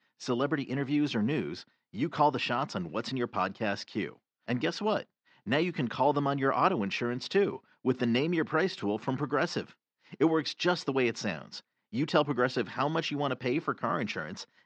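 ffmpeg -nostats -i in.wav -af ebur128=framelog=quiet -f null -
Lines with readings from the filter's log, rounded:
Integrated loudness:
  I:         -30.5 LUFS
  Threshold: -40.8 LUFS
Loudness range:
  LRA:         3.1 LU
  Threshold: -50.7 LUFS
  LRA low:   -32.2 LUFS
  LRA high:  -29.1 LUFS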